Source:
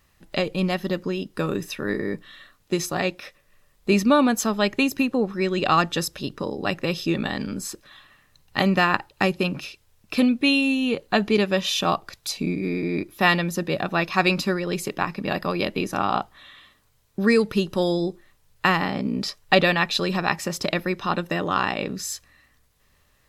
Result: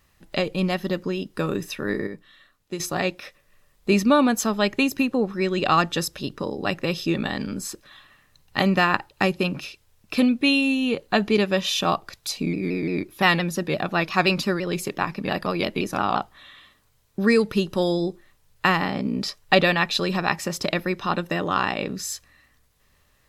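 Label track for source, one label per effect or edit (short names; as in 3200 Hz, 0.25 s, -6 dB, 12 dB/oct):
2.070000	2.800000	gain -7.5 dB
12.360000	16.190000	shaped vibrato saw down 5.8 Hz, depth 100 cents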